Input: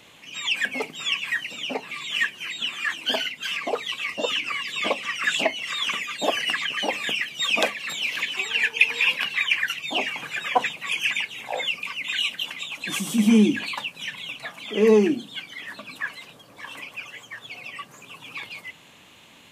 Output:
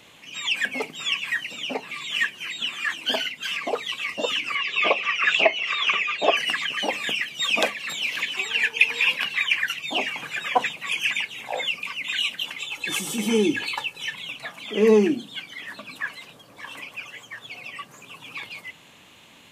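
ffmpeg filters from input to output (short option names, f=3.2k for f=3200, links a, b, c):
-filter_complex "[0:a]asettb=1/sr,asplit=3[a][b][c];[a]atrim=end=4.554[d];[b]atrim=start=4.55:end=6.37,asetpts=PTS-STARTPTS,afade=t=in:d=0.004:c=qsin,afade=t=out:st=1.816:d=0.004:c=qsin,highpass=140,equalizer=f=250:t=q:w=4:g=-10,equalizer=f=400:t=q:w=4:g=7,equalizer=f=680:t=q:w=4:g=5,equalizer=f=1.2k:t=q:w=4:g=6,equalizer=f=2.5k:t=q:w=4:g=9,equalizer=f=4.3k:t=q:w=4:g=-4,lowpass=f=5.8k:w=0.5412,lowpass=f=5.8k:w=1.3066[e];[c]atrim=start=6.366[f];[d][e]acrossfade=d=0.004:c1=hsin:c2=qsin[g];[g][f]acrossfade=d=0.004:c1=qsin:c2=hsin,asettb=1/sr,asplit=3[h][i][j];[h]atrim=end=12.564[k];[i]atrim=start=12.56:end=14.14,asetpts=PTS-STARTPTS,afade=t=in:d=0.004:c=qsin,afade=t=out:st=1.576:d=0.004:c=qsin,aecho=1:1:2.3:0.65,atrim=end_sample=69678[l];[j]atrim=start=14.136[m];[k][l]acrossfade=d=0.004:c1=hsin:c2=qsin[n];[n][m]acrossfade=d=0.004:c1=qsin:c2=hsin"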